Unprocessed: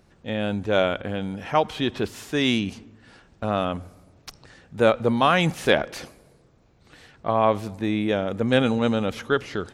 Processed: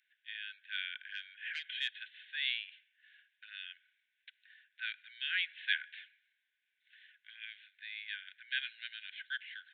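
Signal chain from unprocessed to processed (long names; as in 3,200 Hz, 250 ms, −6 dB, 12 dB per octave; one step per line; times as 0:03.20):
downsampling to 8,000 Hz
0:01.09–0:01.88: mid-hump overdrive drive 12 dB, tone 3,000 Hz, clips at −6 dBFS
Chebyshev high-pass filter 1,500 Hz, order 10
level −7.5 dB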